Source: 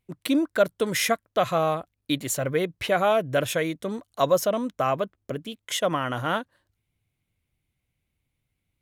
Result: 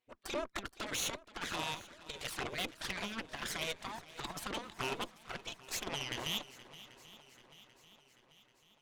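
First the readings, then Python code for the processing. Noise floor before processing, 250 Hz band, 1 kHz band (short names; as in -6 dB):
-80 dBFS, -18.5 dB, -16.0 dB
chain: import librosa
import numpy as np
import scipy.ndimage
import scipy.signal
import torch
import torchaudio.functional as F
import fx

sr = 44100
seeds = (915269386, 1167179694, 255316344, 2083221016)

p1 = scipy.signal.sosfilt(scipy.signal.butter(2, 5100.0, 'lowpass', fs=sr, output='sos'), x)
p2 = fx.spec_gate(p1, sr, threshold_db=-15, keep='weak')
p3 = fx.over_compress(p2, sr, threshold_db=-36.0, ratio=-0.5)
p4 = fx.env_flanger(p3, sr, rest_ms=8.3, full_db=-34.5)
p5 = fx.cheby_harmonics(p4, sr, harmonics=(8,), levels_db=(-16,), full_scale_db=-24.0)
p6 = p5 + fx.echo_swing(p5, sr, ms=788, ratio=1.5, feedback_pct=52, wet_db=-17.5, dry=0)
y = p6 * librosa.db_to_amplitude(1.0)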